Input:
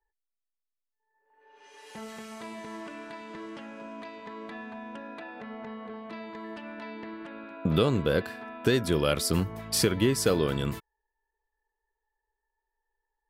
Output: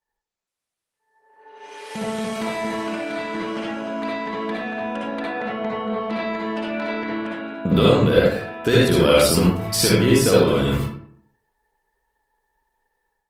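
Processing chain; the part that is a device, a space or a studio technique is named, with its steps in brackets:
0:01.90–0:02.42: dynamic equaliser 170 Hz, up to +6 dB, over −56 dBFS, Q 0.89
far-field microphone of a smart speaker (convolution reverb RT60 0.55 s, pre-delay 54 ms, DRR −5.5 dB; high-pass filter 100 Hz 6 dB per octave; automatic gain control gain up to 10.5 dB; level −1 dB; Opus 24 kbit/s 48,000 Hz)

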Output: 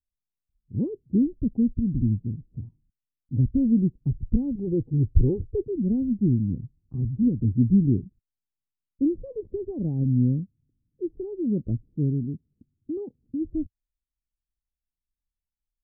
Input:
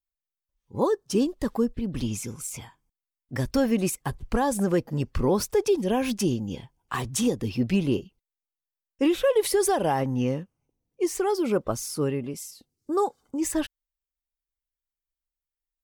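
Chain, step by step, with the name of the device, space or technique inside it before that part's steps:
0:04.55–0:05.63: comb filter 2.4 ms, depth 84%
the neighbour's flat through the wall (low-pass filter 270 Hz 24 dB per octave; parametric band 100 Hz +5 dB 0.91 octaves)
level +5 dB

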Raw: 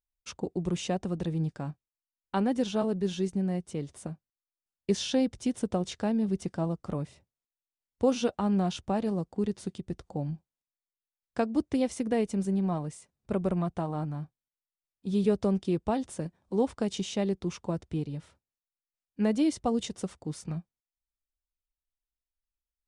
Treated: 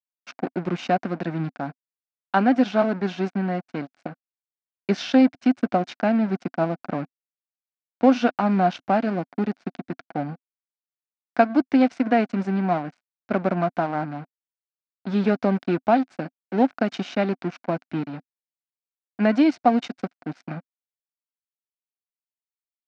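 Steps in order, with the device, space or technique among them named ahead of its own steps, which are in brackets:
blown loudspeaker (dead-zone distortion −42 dBFS; loudspeaker in its box 190–4,800 Hz, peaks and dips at 260 Hz +6 dB, 440 Hz −7 dB, 710 Hz +9 dB, 1,500 Hz +10 dB, 2,300 Hz +6 dB, 3,400 Hz −4 dB)
level +7.5 dB

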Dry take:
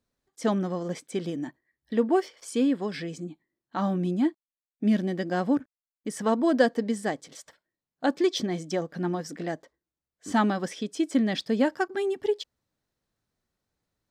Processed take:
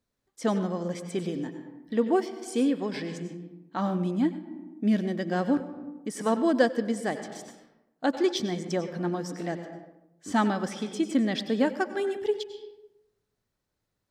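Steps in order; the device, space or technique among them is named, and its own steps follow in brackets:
compressed reverb return (on a send at −4.5 dB: convolution reverb RT60 0.85 s, pre-delay 88 ms + downward compressor 6 to 1, threshold −29 dBFS, peak gain reduction 14 dB)
on the sum: level −1 dB

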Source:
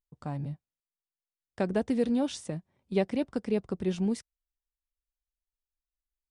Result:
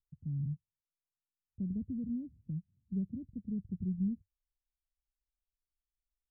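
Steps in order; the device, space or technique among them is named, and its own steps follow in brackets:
the neighbour's flat through the wall (low-pass filter 190 Hz 24 dB per octave; parametric band 95 Hz +6 dB 0.42 octaves)

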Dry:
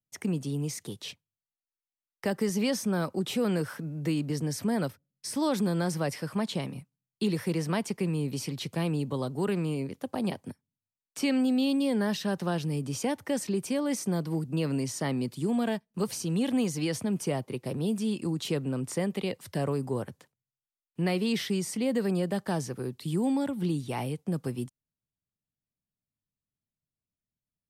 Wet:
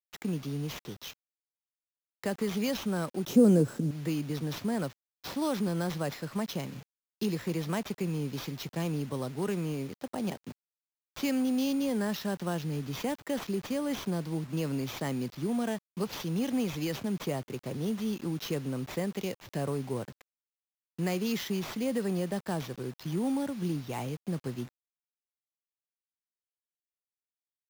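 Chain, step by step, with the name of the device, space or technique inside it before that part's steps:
early 8-bit sampler (sample-rate reduction 9,300 Hz, jitter 0%; bit reduction 8 bits)
0:03.27–0:03.91: graphic EQ with 10 bands 125 Hz +7 dB, 250 Hz +10 dB, 500 Hz +7 dB, 1,000 Hz −4 dB, 2,000 Hz −6 dB, 4,000 Hz −4 dB, 8,000 Hz +6 dB
level −3 dB

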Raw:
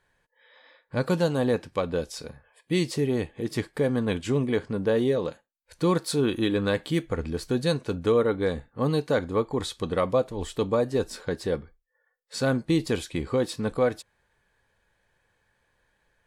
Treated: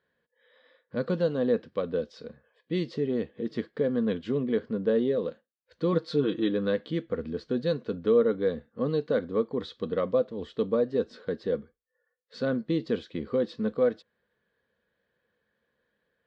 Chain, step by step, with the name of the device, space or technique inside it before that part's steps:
0:05.92–0:06.49: comb filter 6.4 ms, depth 66%
guitar cabinet (loudspeaker in its box 100–4,200 Hz, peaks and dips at 110 Hz −8 dB, 220 Hz +8 dB, 480 Hz +7 dB, 850 Hz −10 dB, 2,400 Hz −7 dB)
level −5.5 dB

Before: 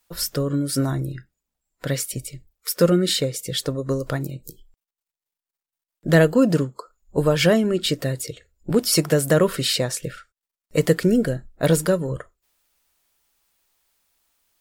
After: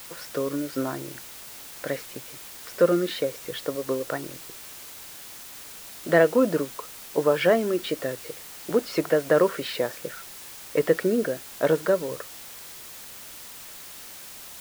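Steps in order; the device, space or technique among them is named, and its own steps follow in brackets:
wax cylinder (band-pass filter 350–2,000 Hz; tape wow and flutter; white noise bed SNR 15 dB)

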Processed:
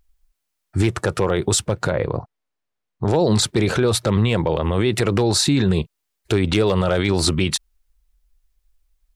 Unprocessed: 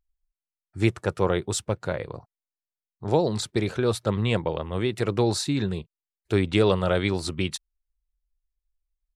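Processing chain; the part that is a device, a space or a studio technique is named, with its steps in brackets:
0:01.91–0:03.05: low-pass filter 1,700 Hz 6 dB per octave
loud club master (downward compressor 2 to 1, threshold −23 dBFS, peak gain reduction 5 dB; hard clipping −14.5 dBFS, distortion −25 dB; boost into a limiter +23.5 dB)
level −7.5 dB

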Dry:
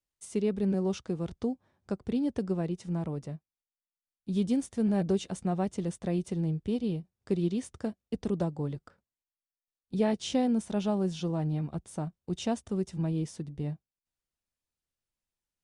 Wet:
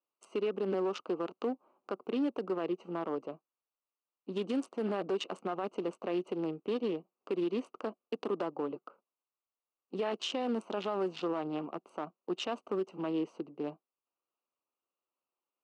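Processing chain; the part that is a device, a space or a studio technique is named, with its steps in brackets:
adaptive Wiener filter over 25 samples
laptop speaker (high-pass filter 310 Hz 24 dB per octave; parametric band 1,200 Hz +11.5 dB 0.6 octaves; parametric band 2,800 Hz +10.5 dB 0.32 octaves; brickwall limiter −30.5 dBFS, peak gain reduction 13 dB)
low-pass filter 6,100 Hz 12 dB per octave
level +5.5 dB

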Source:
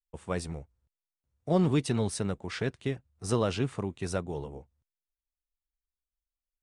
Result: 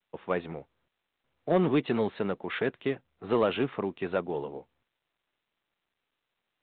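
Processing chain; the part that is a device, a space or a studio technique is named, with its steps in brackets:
telephone (band-pass filter 260–3,400 Hz; soft clipping −20.5 dBFS, distortion −18 dB; level +5.5 dB; mu-law 64 kbit/s 8,000 Hz)

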